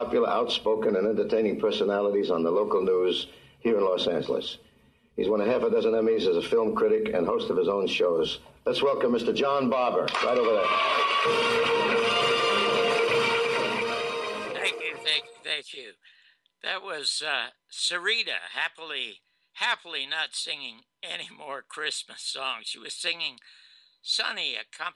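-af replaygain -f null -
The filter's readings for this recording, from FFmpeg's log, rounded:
track_gain = +6.5 dB
track_peak = 0.170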